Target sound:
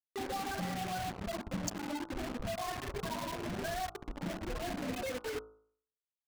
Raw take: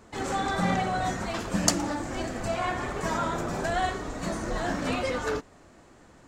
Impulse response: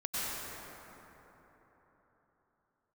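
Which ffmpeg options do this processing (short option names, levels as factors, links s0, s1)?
-filter_complex "[0:a]asuperstop=centerf=1300:order=12:qfactor=5.3,afftfilt=real='re*gte(hypot(re,im),0.112)':imag='im*gte(hypot(re,im),0.112)':win_size=1024:overlap=0.75,acompressor=threshold=0.0126:ratio=8,asplit=2[s0][s1];[s1]adelay=99,lowpass=f=1900:p=1,volume=0.168,asplit=2[s2][s3];[s3]adelay=99,lowpass=f=1900:p=1,volume=0.25,asplit=2[s4][s5];[s5]adelay=99,lowpass=f=1900:p=1,volume=0.25[s6];[s0][s2][s4][s6]amix=inputs=4:normalize=0,acrusher=bits=6:mix=0:aa=0.000001,anlmdn=0.0251,bandreject=f=54.42:t=h:w=4,bandreject=f=108.84:t=h:w=4,bandreject=f=163.26:t=h:w=4,bandreject=f=217.68:t=h:w=4,bandreject=f=272.1:t=h:w=4,bandreject=f=326.52:t=h:w=4,bandreject=f=380.94:t=h:w=4,bandreject=f=435.36:t=h:w=4,bandreject=f=489.78:t=h:w=4,bandreject=f=544.2:t=h:w=4,bandreject=f=598.62:t=h:w=4,bandreject=f=653.04:t=h:w=4,bandreject=f=707.46:t=h:w=4,bandreject=f=761.88:t=h:w=4,bandreject=f=816.3:t=h:w=4,bandreject=f=870.72:t=h:w=4,bandreject=f=925.14:t=h:w=4,bandreject=f=979.56:t=h:w=4,bandreject=f=1033.98:t=h:w=4,bandreject=f=1088.4:t=h:w=4,bandreject=f=1142.82:t=h:w=4,bandreject=f=1197.24:t=h:w=4,bandreject=f=1251.66:t=h:w=4,bandreject=f=1306.08:t=h:w=4,bandreject=f=1360.5:t=h:w=4,bandreject=f=1414.92:t=h:w=4,bandreject=f=1469.34:t=h:w=4,volume=1.33"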